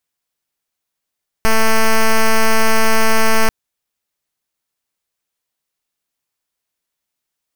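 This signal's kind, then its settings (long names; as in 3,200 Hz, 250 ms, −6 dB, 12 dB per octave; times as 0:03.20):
pulse wave 222 Hz, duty 6% −10 dBFS 2.04 s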